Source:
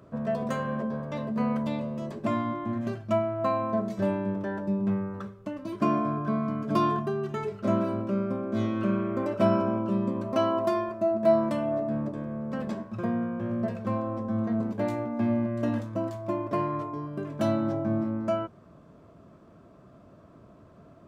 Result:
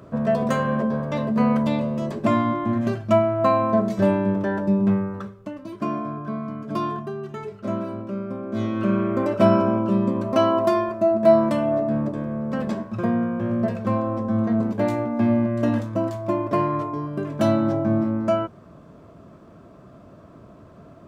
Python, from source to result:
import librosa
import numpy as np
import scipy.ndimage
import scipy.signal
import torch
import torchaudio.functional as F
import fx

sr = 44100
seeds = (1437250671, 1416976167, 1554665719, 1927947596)

y = fx.gain(x, sr, db=fx.line((4.84, 8.0), (5.81, -1.5), (8.23, -1.5), (9.03, 6.5)))